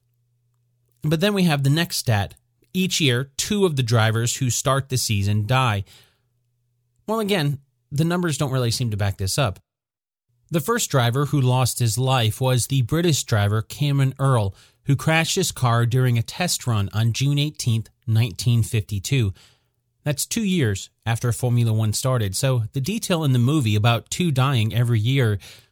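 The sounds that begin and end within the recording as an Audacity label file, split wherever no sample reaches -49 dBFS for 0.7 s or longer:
0.920000	6.080000	sound
7.080000	9.600000	sound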